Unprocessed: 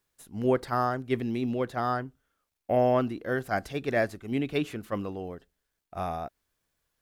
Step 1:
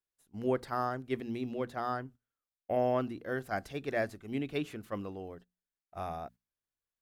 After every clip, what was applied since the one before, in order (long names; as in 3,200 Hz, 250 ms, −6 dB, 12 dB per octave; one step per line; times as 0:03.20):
mains-hum notches 60/120/180/240 Hz
noise gate −46 dBFS, range −12 dB
level −6 dB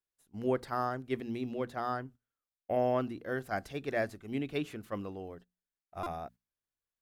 buffer that repeats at 0:06.03, samples 128, times 10